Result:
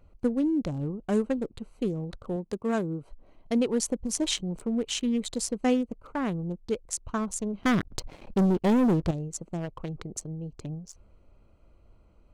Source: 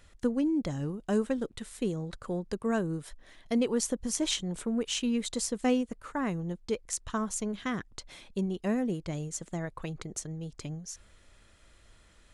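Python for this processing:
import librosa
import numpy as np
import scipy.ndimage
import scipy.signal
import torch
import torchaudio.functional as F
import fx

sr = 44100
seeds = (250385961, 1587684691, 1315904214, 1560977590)

y = fx.wiener(x, sr, points=25)
y = fx.highpass(y, sr, hz=120.0, slope=6, at=(2.36, 3.02))
y = fx.leveller(y, sr, passes=3, at=(7.63, 9.11))
y = y * librosa.db_to_amplitude(2.5)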